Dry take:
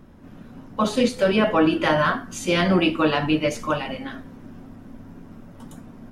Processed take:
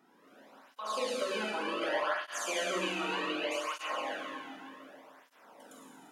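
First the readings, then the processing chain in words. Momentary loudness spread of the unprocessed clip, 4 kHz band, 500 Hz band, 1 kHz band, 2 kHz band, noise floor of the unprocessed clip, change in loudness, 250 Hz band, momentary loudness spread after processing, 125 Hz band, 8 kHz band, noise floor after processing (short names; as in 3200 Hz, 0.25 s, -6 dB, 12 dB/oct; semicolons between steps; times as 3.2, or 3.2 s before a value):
13 LU, -8.5 dB, -12.5 dB, -10.0 dB, -9.5 dB, -45 dBFS, -13.0 dB, -20.0 dB, 21 LU, under -25 dB, -5.0 dB, -64 dBFS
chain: HPF 550 Hz 12 dB/oct; compressor, threshold -27 dBFS, peak gain reduction 10 dB; darkening echo 0.139 s, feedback 71%, low-pass 3400 Hz, level -10 dB; Schroeder reverb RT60 2.2 s, combs from 33 ms, DRR -3 dB; tape flanging out of phase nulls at 0.66 Hz, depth 1.9 ms; gain -5 dB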